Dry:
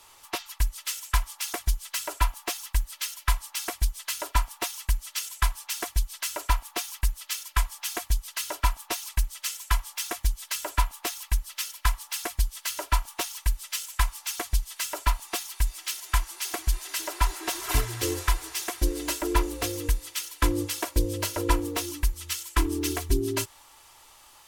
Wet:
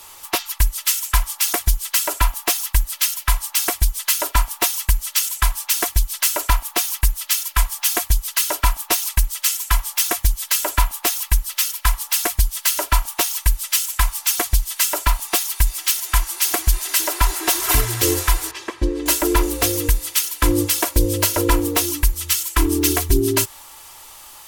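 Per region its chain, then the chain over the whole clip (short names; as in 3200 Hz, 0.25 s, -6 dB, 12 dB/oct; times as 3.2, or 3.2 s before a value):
18.51–19.06 tape spacing loss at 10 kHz 25 dB + notch comb 710 Hz
whole clip: high shelf 11000 Hz +11 dB; maximiser +13 dB; gain -3.5 dB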